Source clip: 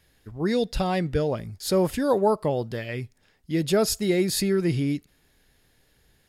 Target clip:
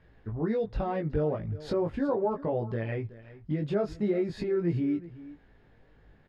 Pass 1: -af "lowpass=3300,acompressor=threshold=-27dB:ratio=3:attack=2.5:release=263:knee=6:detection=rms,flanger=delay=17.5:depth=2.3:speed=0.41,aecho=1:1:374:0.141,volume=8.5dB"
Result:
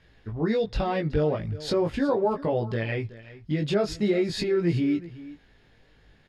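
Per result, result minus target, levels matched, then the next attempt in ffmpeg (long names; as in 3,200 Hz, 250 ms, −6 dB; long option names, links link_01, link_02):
4,000 Hz band +10.5 dB; downward compressor: peak gain reduction −4 dB
-af "lowpass=1500,acompressor=threshold=-27dB:ratio=3:attack=2.5:release=263:knee=6:detection=rms,flanger=delay=17.5:depth=2.3:speed=0.41,aecho=1:1:374:0.141,volume=8.5dB"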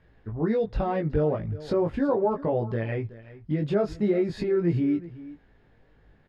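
downward compressor: peak gain reduction −4 dB
-af "lowpass=1500,acompressor=threshold=-33dB:ratio=3:attack=2.5:release=263:knee=6:detection=rms,flanger=delay=17.5:depth=2.3:speed=0.41,aecho=1:1:374:0.141,volume=8.5dB"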